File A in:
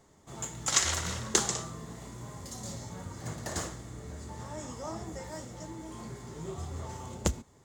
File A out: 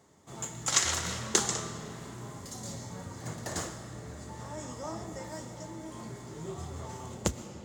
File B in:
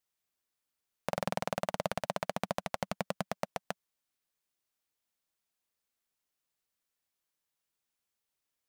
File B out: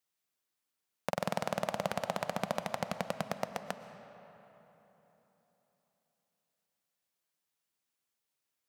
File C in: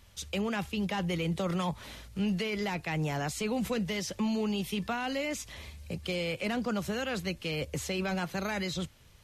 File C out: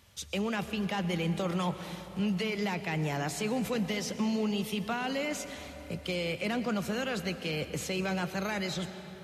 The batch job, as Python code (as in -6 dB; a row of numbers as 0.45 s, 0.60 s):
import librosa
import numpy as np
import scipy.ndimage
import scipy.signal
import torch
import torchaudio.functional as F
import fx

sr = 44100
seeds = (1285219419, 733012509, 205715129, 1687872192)

y = scipy.signal.sosfilt(scipy.signal.butter(2, 86.0, 'highpass', fs=sr, output='sos'), x)
y = fx.rev_freeverb(y, sr, rt60_s=3.8, hf_ratio=0.6, predelay_ms=80, drr_db=10.0)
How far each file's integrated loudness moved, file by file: 0.0 LU, +0.5 LU, +0.5 LU